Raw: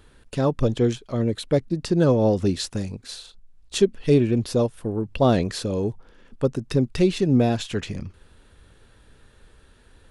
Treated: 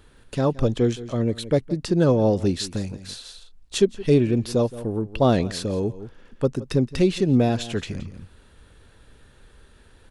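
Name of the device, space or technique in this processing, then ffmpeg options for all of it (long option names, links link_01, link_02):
ducked delay: -filter_complex "[0:a]asplit=3[link_01][link_02][link_03];[link_02]adelay=170,volume=-5dB[link_04];[link_03]apad=whole_len=453299[link_05];[link_04][link_05]sidechaincompress=threshold=-42dB:ratio=3:attack=16:release=195[link_06];[link_01][link_06]amix=inputs=2:normalize=0"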